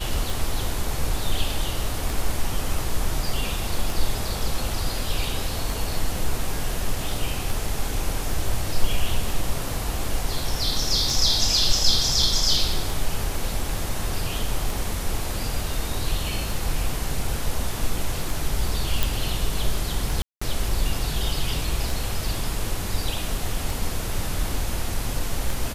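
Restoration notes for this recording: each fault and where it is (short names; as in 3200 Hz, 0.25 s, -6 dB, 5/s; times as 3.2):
tick 33 1/3 rpm
19.03 pop
20.22–20.41 gap 0.195 s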